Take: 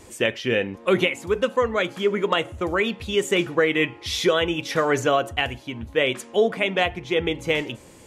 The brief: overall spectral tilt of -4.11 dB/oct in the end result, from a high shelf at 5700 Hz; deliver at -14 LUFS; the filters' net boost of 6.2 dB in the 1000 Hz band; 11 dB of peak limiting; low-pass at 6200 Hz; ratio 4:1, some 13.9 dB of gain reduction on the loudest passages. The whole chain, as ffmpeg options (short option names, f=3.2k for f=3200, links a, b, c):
-af "lowpass=6.2k,equalizer=f=1k:t=o:g=8,highshelf=f=5.7k:g=4,acompressor=threshold=-29dB:ratio=4,volume=22dB,alimiter=limit=-3.5dB:level=0:latency=1"